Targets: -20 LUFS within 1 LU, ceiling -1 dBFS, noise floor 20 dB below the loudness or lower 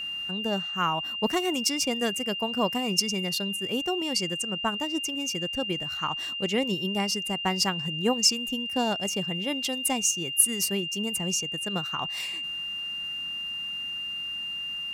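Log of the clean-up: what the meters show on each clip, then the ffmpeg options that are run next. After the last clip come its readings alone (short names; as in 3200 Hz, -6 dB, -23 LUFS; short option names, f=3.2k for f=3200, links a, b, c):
steady tone 2800 Hz; tone level -31 dBFS; loudness -27.0 LUFS; peak -5.5 dBFS; loudness target -20.0 LUFS
-> -af "bandreject=f=2.8k:w=30"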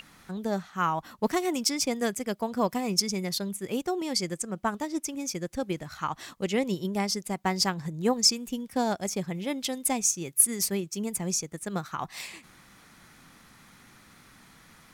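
steady tone none; loudness -28.5 LUFS; peak -6.0 dBFS; loudness target -20.0 LUFS
-> -af "volume=8.5dB,alimiter=limit=-1dB:level=0:latency=1"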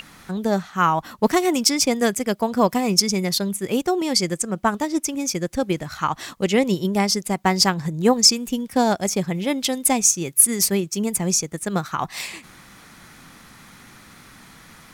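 loudness -20.5 LUFS; peak -1.0 dBFS; noise floor -47 dBFS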